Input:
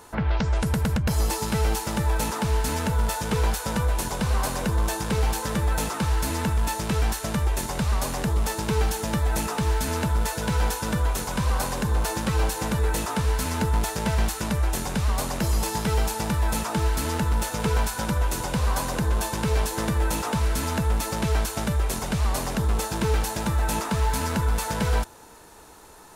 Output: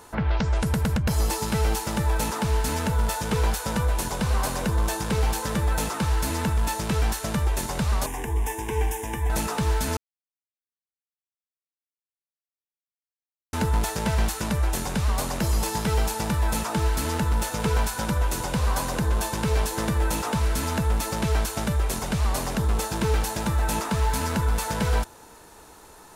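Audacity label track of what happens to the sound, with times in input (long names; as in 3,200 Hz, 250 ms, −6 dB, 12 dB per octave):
8.060000	9.300000	phaser with its sweep stopped centre 880 Hz, stages 8
9.970000	13.530000	silence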